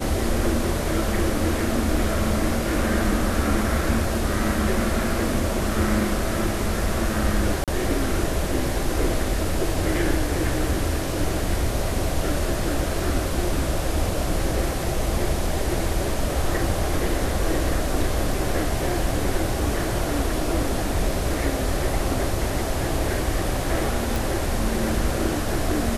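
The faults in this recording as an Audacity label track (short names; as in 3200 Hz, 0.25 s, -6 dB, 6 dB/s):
7.640000	7.680000	gap 37 ms
24.160000	24.160000	pop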